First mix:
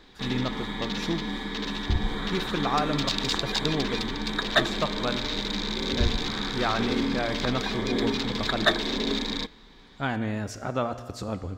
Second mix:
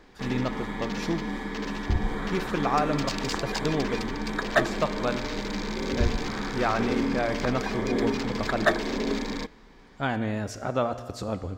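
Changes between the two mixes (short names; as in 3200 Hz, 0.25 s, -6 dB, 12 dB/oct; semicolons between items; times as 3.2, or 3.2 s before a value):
background: add bell 3700 Hz -13.5 dB 0.4 oct; master: add bell 580 Hz +3 dB 1 oct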